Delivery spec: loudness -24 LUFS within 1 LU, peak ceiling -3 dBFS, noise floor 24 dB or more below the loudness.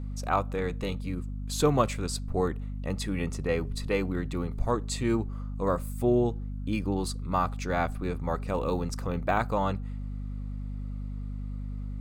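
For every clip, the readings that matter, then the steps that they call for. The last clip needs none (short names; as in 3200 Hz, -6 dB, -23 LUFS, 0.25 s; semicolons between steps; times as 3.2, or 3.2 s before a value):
hum 50 Hz; harmonics up to 250 Hz; hum level -32 dBFS; loudness -30.5 LUFS; peak -11.0 dBFS; loudness target -24.0 LUFS
-> notches 50/100/150/200/250 Hz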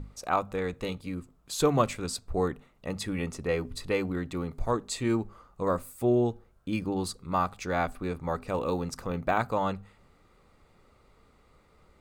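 hum none; loudness -30.5 LUFS; peak -11.0 dBFS; loudness target -24.0 LUFS
-> gain +6.5 dB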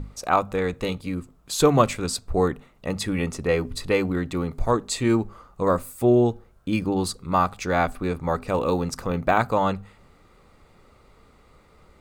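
loudness -24.0 LUFS; peak -4.5 dBFS; noise floor -56 dBFS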